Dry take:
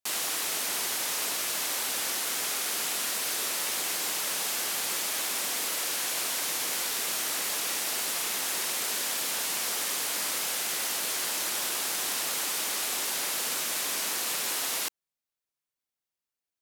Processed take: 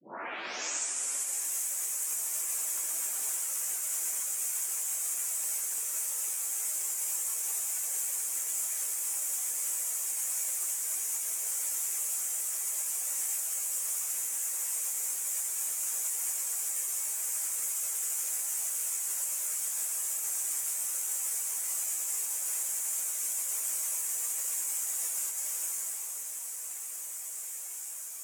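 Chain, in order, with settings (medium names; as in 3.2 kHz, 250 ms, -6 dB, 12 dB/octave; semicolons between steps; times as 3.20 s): tape start-up on the opening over 0.96 s; resonant high shelf 5.6 kHz +11 dB, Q 3; reverse; upward compressor, threshold -36 dBFS; reverse; hum notches 60/120/180/240/300/360/420/480 Hz; reverberation RT60 2.5 s, pre-delay 118 ms, DRR 7.5 dB; compression 8:1, threshold -21 dBFS, peak gain reduction 7.5 dB; dynamic bell 2.3 kHz, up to +4 dB, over -57 dBFS, Q 4.7; Bessel high-pass 370 Hz, order 4; echo that smears into a reverb 1627 ms, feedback 45%, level -10 dB; peak limiter -17 dBFS, peak gain reduction 6 dB; plain phase-vocoder stretch 1.7×; trim -3.5 dB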